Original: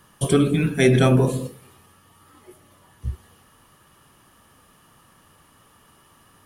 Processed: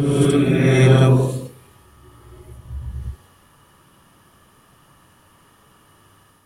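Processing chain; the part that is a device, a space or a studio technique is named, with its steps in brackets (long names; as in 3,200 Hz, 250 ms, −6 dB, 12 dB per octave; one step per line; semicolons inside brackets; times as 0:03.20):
reverse reverb (reversed playback; convolution reverb RT60 1.7 s, pre-delay 52 ms, DRR −2.5 dB; reversed playback)
level −2.5 dB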